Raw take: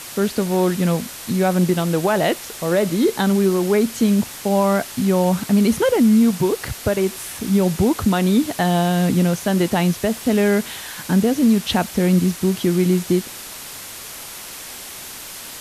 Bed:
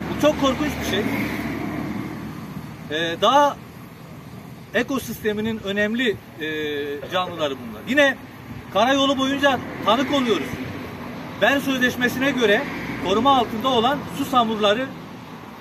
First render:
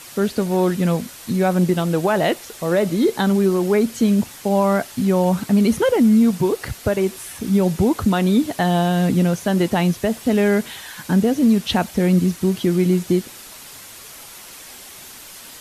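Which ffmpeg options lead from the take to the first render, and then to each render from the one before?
-af "afftdn=nr=6:nf=-35"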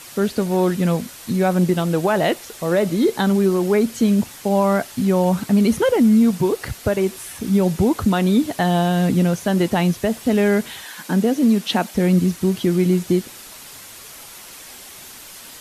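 -filter_complex "[0:a]asettb=1/sr,asplit=3[s0][s1][s2];[s0]atrim=end=10.854[s3];[s1]atrim=start=10.85:end=11.95,asetpts=PTS-STARTPTS,afade=t=in:d=0.004:c=qsin,afade=t=out:st=1.096:d=0.004:c=qsin,highpass=f=180:w=0.5412,highpass=f=180:w=1.3066[s4];[s2]atrim=start=11.946[s5];[s3][s4]acrossfade=d=0.004:c1=hsin:c2=qsin[s6];[s6][s5]acrossfade=d=0.004:c1=qsin:c2=hsin"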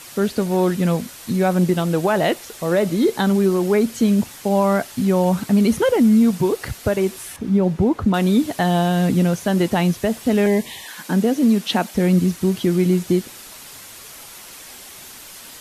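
-filter_complex "[0:a]asettb=1/sr,asplit=3[s0][s1][s2];[s0]atrim=end=7.364[s3];[s1]atrim=start=7.36:end=8.14,asetpts=PTS-STARTPTS,afade=t=in:d=0.004:c=qsin,afade=t=out:st=0.776:d=0.004:c=qsin,lowpass=f=1400:p=1[s4];[s2]atrim=start=8.136[s5];[s3][s4]acrossfade=d=0.004:c1=hsin:c2=qsin[s6];[s6][s5]acrossfade=d=0.004:c1=qsin:c2=hsin,asettb=1/sr,asplit=3[s7][s8][s9];[s7]atrim=end=10.464[s10];[s8]atrim=start=10.46:end=10.88,asetpts=PTS-STARTPTS,afade=t=in:d=0.004:c=qsin,afade=t=out:st=0.416:d=0.004:c=qsin,asuperstop=centerf=1400:order=20:qfactor=2.8[s11];[s9]atrim=start=10.876[s12];[s10][s11]acrossfade=d=0.004:c1=hsin:c2=qsin[s13];[s13][s12]acrossfade=d=0.004:c1=qsin:c2=hsin"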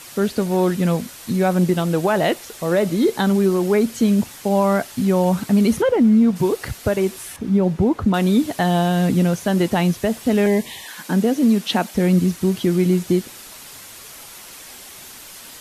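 -filter_complex "[0:a]asplit=3[s0][s1][s2];[s0]afade=t=out:st=5.81:d=0.02[s3];[s1]lowpass=f=2100:p=1,afade=t=in:st=5.81:d=0.02,afade=t=out:st=6.35:d=0.02[s4];[s2]afade=t=in:st=6.35:d=0.02[s5];[s3][s4][s5]amix=inputs=3:normalize=0"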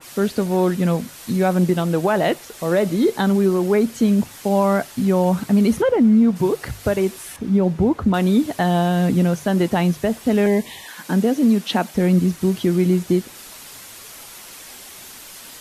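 -af "bandreject=f=50:t=h:w=6,bandreject=f=100:t=h:w=6,bandreject=f=150:t=h:w=6,adynamicequalizer=threshold=0.0126:dfrequency=2200:dqfactor=0.7:tfrequency=2200:tqfactor=0.7:attack=5:release=100:ratio=0.375:range=1.5:mode=cutabove:tftype=highshelf"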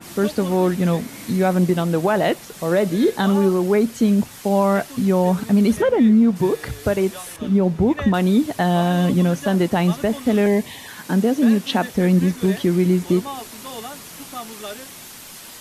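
-filter_complex "[1:a]volume=0.168[s0];[0:a][s0]amix=inputs=2:normalize=0"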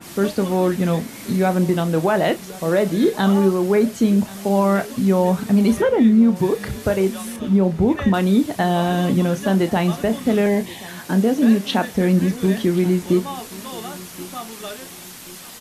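-filter_complex "[0:a]asplit=2[s0][s1];[s1]adelay=31,volume=0.266[s2];[s0][s2]amix=inputs=2:normalize=0,aecho=1:1:1080|2160|3240:0.1|0.036|0.013"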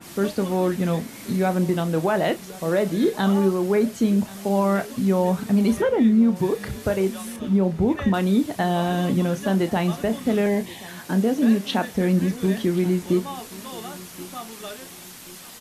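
-af "volume=0.668"

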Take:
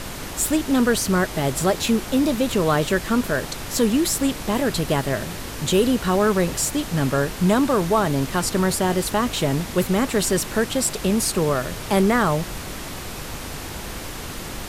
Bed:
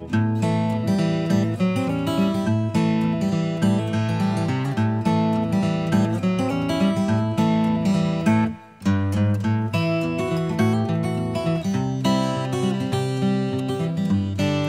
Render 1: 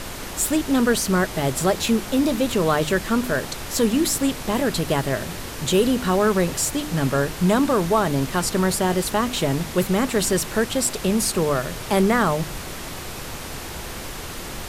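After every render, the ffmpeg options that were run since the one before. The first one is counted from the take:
-af "bandreject=f=50:t=h:w=4,bandreject=f=100:t=h:w=4,bandreject=f=150:t=h:w=4,bandreject=f=200:t=h:w=4,bandreject=f=250:t=h:w=4,bandreject=f=300:t=h:w=4"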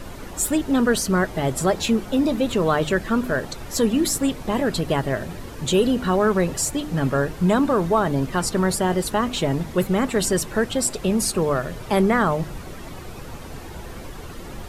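-af "afftdn=nr=11:nf=-33"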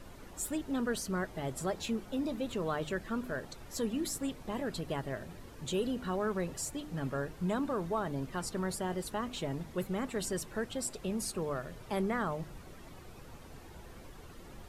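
-af "volume=0.188"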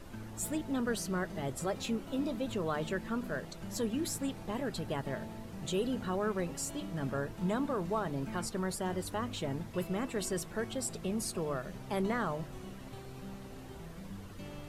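-filter_complex "[1:a]volume=0.0531[s0];[0:a][s0]amix=inputs=2:normalize=0"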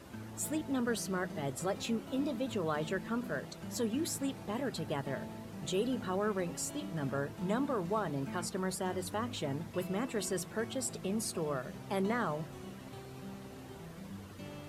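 -af "highpass=75,bandreject=f=60:t=h:w=6,bandreject=f=120:t=h:w=6,bandreject=f=180:t=h:w=6"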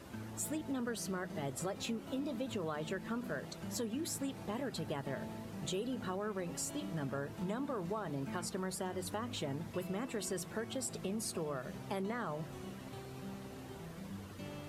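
-af "acompressor=threshold=0.0178:ratio=6"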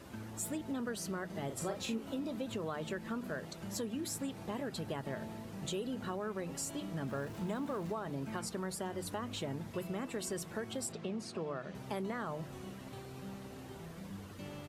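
-filter_complex "[0:a]asplit=3[s0][s1][s2];[s0]afade=t=out:st=1.49:d=0.02[s3];[s1]asplit=2[s4][s5];[s5]adelay=40,volume=0.501[s6];[s4][s6]amix=inputs=2:normalize=0,afade=t=in:st=1.49:d=0.02,afade=t=out:st=2.11:d=0.02[s7];[s2]afade=t=in:st=2.11:d=0.02[s8];[s3][s7][s8]amix=inputs=3:normalize=0,asettb=1/sr,asplit=3[s9][s10][s11];[s9]atrim=end=7.074[s12];[s10]atrim=start=7.07:end=7.92,asetpts=PTS-STARTPTS,afade=t=in:d=0.004:c=qsin,afade=t=out:st=0.846:d=0.004:c=qsin,aeval=exprs='val(0)+0.5*0.00299*sgn(val(0))':c=same[s13];[s11]atrim=start=7.916[s14];[s12][s13]acrossfade=d=0.004:c1=hsin:c2=qsin[s15];[s15][s14]acrossfade=d=0.004:c1=qsin:c2=hsin,asettb=1/sr,asplit=3[s16][s17][s18];[s16]atrim=end=10.924[s19];[s17]atrim=start=10.92:end=11.75,asetpts=PTS-STARTPTS,afade=t=in:d=0.004:c=qsin,afade=t=out:st=0.826:d=0.004:c=qsin,highpass=120,lowpass=4500[s20];[s18]atrim=start=11.746[s21];[s19][s20]acrossfade=d=0.004:c1=hsin:c2=qsin[s22];[s22][s21]acrossfade=d=0.004:c1=qsin:c2=hsin"

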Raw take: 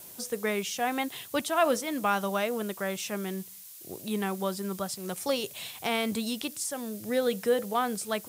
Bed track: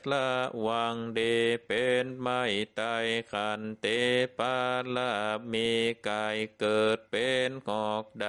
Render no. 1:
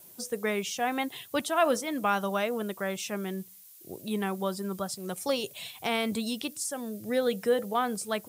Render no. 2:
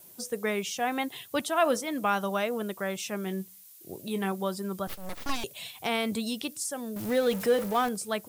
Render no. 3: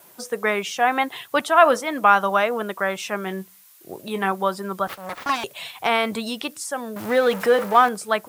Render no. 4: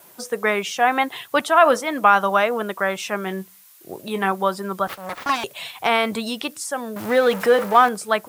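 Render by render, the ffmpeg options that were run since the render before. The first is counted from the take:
-af "afftdn=nr=8:nf=-47"
-filter_complex "[0:a]asettb=1/sr,asplit=3[s0][s1][s2];[s0]atrim=end=3.244[s3];[s1]atrim=start=3.24:end=4.32,asetpts=PTS-STARTPTS,afade=t=in:d=0.004:c=qsin,afade=t=out:st=1.076:d=0.004:c=qsin,asplit=2[s4][s5];[s5]adelay=21,volume=0.299[s6];[s4][s6]amix=inputs=2:normalize=0,atrim=end_sample=47628[s7];[s2]atrim=start=4.316[s8];[s3][s7]acrossfade=d=0.004:c1=hsin:c2=qsin[s9];[s9][s8]acrossfade=d=0.004:c1=qsin:c2=hsin,asettb=1/sr,asplit=3[s10][s11][s12];[s10]atrim=end=4.874[s13];[s11]atrim=start=4.87:end=5.44,asetpts=PTS-STARTPTS,afade=t=in:d=0.004:c=qsin,afade=t=out:st=0.566:d=0.004:c=qsin,aeval=exprs='abs(val(0))':c=same[s14];[s12]atrim=start=5.436[s15];[s13][s14]acrossfade=d=0.004:c1=hsin:c2=qsin[s16];[s16][s15]acrossfade=d=0.004:c1=qsin:c2=hsin,asettb=1/sr,asplit=3[s17][s18][s19];[s17]atrim=end=6.964[s20];[s18]atrim=start=6.96:end=7.89,asetpts=PTS-STARTPTS,afade=t=in:d=0.004:c=qsin,afade=t=out:st=0.926:d=0.004:c=qsin,aeval=exprs='val(0)+0.5*0.0224*sgn(val(0))':c=same[s21];[s19]atrim=start=7.886[s22];[s20][s21]acrossfade=d=0.004:c1=hsin:c2=qsin[s23];[s23][s22]acrossfade=d=0.004:c1=qsin:c2=hsin"
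-af "highpass=74,equalizer=f=1200:t=o:w=2.6:g=13.5"
-af "volume=1.19,alimiter=limit=0.708:level=0:latency=1"

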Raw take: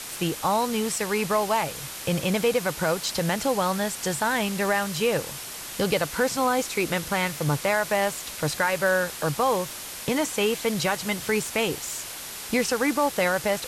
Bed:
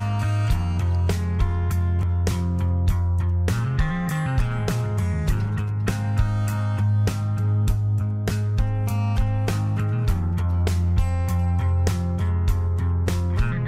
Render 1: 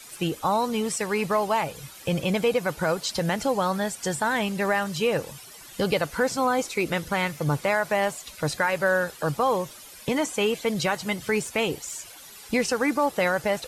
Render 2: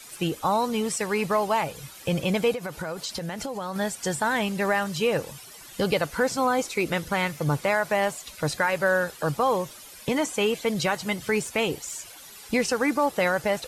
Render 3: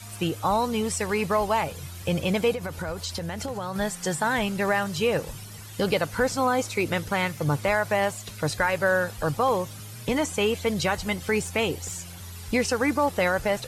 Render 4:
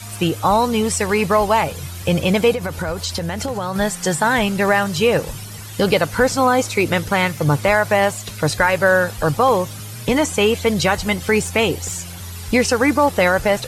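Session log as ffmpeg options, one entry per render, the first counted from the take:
-af "afftdn=nr=13:nf=-37"
-filter_complex "[0:a]asettb=1/sr,asplit=3[s0][s1][s2];[s0]atrim=end=2.524[s3];[s1]atrim=start=2.52:end=3.76,asetpts=PTS-STARTPTS,afade=t=in:d=0.004:c=qsin,afade=t=out:st=1.236:d=0.004:c=qsin,acompressor=threshold=0.0398:ratio=6:attack=3.2:release=140:knee=1:detection=peak[s4];[s2]atrim=start=3.756[s5];[s3][s4]acrossfade=d=0.004:c1=hsin:c2=qsin[s6];[s6][s5]acrossfade=d=0.004:c1=qsin:c2=hsin"
-filter_complex "[1:a]volume=0.106[s0];[0:a][s0]amix=inputs=2:normalize=0"
-af "volume=2.51"

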